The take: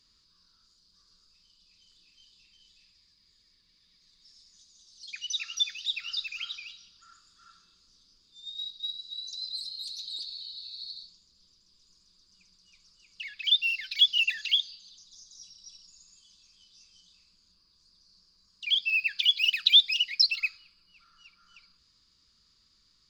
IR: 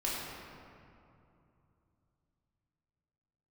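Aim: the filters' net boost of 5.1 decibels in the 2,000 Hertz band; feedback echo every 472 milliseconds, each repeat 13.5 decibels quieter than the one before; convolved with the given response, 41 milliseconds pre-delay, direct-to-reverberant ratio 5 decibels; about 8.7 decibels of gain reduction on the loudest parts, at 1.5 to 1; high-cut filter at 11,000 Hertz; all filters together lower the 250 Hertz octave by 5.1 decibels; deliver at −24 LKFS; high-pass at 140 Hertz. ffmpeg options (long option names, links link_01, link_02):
-filter_complex "[0:a]highpass=140,lowpass=11000,equalizer=frequency=250:width_type=o:gain=-6.5,equalizer=frequency=2000:width_type=o:gain=8,acompressor=threshold=-37dB:ratio=1.5,aecho=1:1:472|944:0.211|0.0444,asplit=2[link_01][link_02];[1:a]atrim=start_sample=2205,adelay=41[link_03];[link_02][link_03]afir=irnorm=-1:irlink=0,volume=-11dB[link_04];[link_01][link_04]amix=inputs=2:normalize=0,volume=5.5dB"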